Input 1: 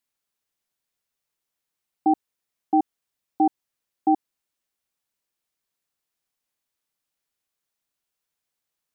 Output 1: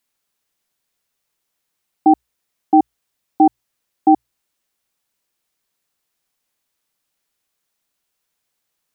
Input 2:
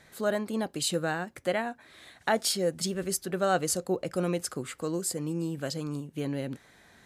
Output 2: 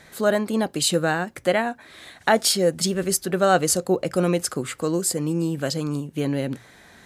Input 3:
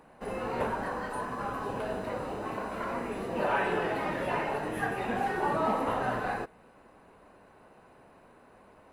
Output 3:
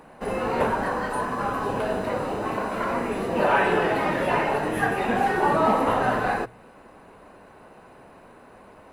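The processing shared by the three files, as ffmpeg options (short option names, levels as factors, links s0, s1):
-af "bandreject=f=60:t=h:w=6,bandreject=f=120:t=h:w=6,volume=2.51"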